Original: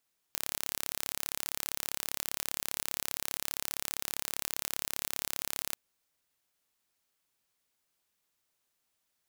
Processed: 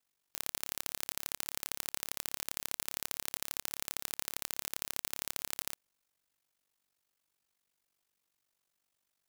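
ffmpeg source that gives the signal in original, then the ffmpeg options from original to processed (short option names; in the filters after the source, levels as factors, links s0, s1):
-f lavfi -i "aevalsrc='0.473*eq(mod(n,1256),0)':d=5.39:s=44100"
-af "aeval=exprs='val(0)*sin(2*PI*24*n/s)':c=same"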